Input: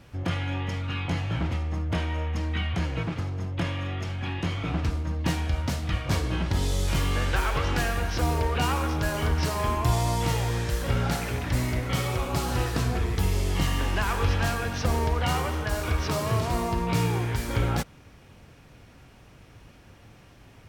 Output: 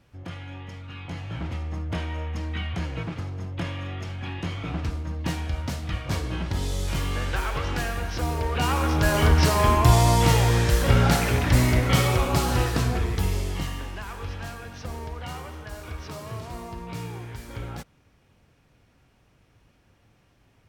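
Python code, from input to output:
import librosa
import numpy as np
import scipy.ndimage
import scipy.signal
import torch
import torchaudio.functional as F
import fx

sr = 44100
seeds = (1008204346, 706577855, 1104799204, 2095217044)

y = fx.gain(x, sr, db=fx.line((0.91, -9.0), (1.64, -2.0), (8.37, -2.0), (9.16, 7.0), (11.95, 7.0), (13.34, -0.5), (13.98, -10.0)))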